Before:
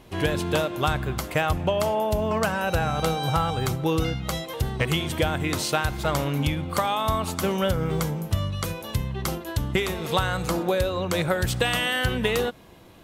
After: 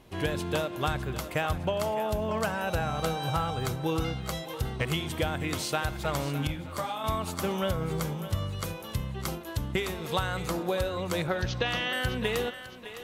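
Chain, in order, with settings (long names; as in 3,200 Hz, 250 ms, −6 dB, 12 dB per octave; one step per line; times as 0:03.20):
0:11.27–0:11.93: Butterworth low-pass 6,400 Hz 96 dB per octave
feedback echo with a high-pass in the loop 609 ms, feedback 45%, high-pass 370 Hz, level −12 dB
0:06.47–0:07.04: micro pitch shift up and down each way 34 cents
level −5.5 dB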